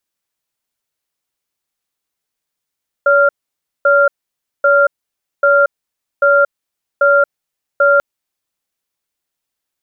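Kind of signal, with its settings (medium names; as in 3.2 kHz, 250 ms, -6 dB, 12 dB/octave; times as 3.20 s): cadence 568 Hz, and 1.39 kHz, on 0.23 s, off 0.56 s, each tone -10 dBFS 4.94 s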